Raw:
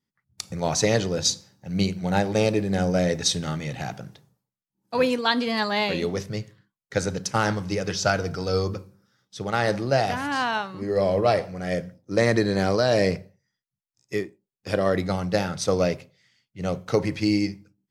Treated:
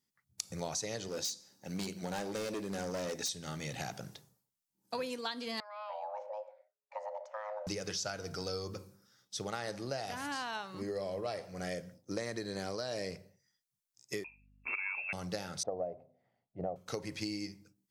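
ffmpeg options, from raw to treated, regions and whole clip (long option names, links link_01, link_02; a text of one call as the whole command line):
ffmpeg -i in.wav -filter_complex "[0:a]asettb=1/sr,asplit=3[link_01][link_02][link_03];[link_01]atrim=end=1.084[link_04];[link_02]atrim=start=1.08:end=3.29,asetpts=PTS-STARTPTS,afade=type=in:duration=0.004:curve=qsin,afade=type=out:start_time=2.206:duration=0.004:curve=qsin,lowshelf=frequency=180:width_type=q:width=1.5:gain=-7,asoftclip=type=hard:threshold=-22dB[link_05];[link_03]atrim=start=3.286[link_06];[link_04][link_05]acrossfade=duration=0.004:curve1=hsin:curve2=qsin[link_07];[link_07][link_06]acrossfade=duration=0.004:curve1=qsin:curve2=hsin,asettb=1/sr,asplit=3[link_08][link_09][link_10];[link_08]atrim=end=5.604[link_11];[link_09]atrim=start=5.6:end=7.67,asetpts=PTS-STARTPTS,afade=type=in:duration=0.004:curve=qsin,afade=type=out:start_time=2.066:duration=0.004:curve=qsin,acompressor=threshold=-39dB:ratio=2:attack=3.2:release=140:knee=1:detection=peak,afreqshift=420,lowpass=1000[link_12];[link_10]atrim=start=7.666[link_13];[link_11][link_12]acrossfade=duration=0.004:curve1=hsin:curve2=qsin[link_14];[link_14][link_13]acrossfade=duration=0.004:curve1=qsin:curve2=hsin,asettb=1/sr,asplit=3[link_15][link_16][link_17];[link_15]atrim=end=14.244[link_18];[link_16]atrim=start=14.24:end=15.13,asetpts=PTS-STARTPTS,afade=type=in:duration=0.004:curve=qsin,afade=type=out:start_time=0.886:duration=0.004:curve=qsin,lowpass=frequency=2400:width_type=q:width=0.5098,lowpass=frequency=2400:width_type=q:width=0.6013,lowpass=frequency=2400:width_type=q:width=0.9,lowpass=frequency=2400:width_type=q:width=2.563,afreqshift=-2800,aeval=exprs='val(0)+0.00141*(sin(2*PI*50*n/s)+sin(2*PI*2*50*n/s)/2+sin(2*PI*3*50*n/s)/3+sin(2*PI*4*50*n/s)/4+sin(2*PI*5*50*n/s)/5)':channel_layout=same[link_19];[link_17]atrim=start=15.126[link_20];[link_18][link_19]acrossfade=duration=0.004:curve1=hsin:curve2=qsin[link_21];[link_21][link_20]acrossfade=duration=0.004:curve1=qsin:curve2=hsin,asettb=1/sr,asplit=3[link_22][link_23][link_24];[link_22]atrim=end=15.634[link_25];[link_23]atrim=start=15.63:end=16.76,asetpts=PTS-STARTPTS,afade=type=in:duration=0.004:curve=qsin,afade=type=out:start_time=1.126:duration=0.004:curve=qsin,lowpass=frequency=700:width_type=q:width=6.3,bandreject=frequency=50:width_type=h:width=6,bandreject=frequency=100:width_type=h:width=6,bandreject=frequency=150:width_type=h:width=6,bandreject=frequency=200:width_type=h:width=6,bandreject=frequency=250:width_type=h:width=6[link_26];[link_24]atrim=start=16.756[link_27];[link_25][link_26]acrossfade=duration=0.004:curve1=hsin:curve2=qsin[link_28];[link_28][link_27]acrossfade=duration=0.004:curve1=qsin:curve2=hsin,bass=frequency=250:gain=-4,treble=frequency=4000:gain=9,acompressor=threshold=-33dB:ratio=6,volume=-3dB" out.wav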